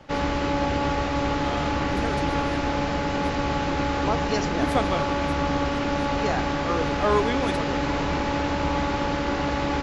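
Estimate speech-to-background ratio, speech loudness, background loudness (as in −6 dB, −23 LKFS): −5.0 dB, −30.5 LKFS, −25.5 LKFS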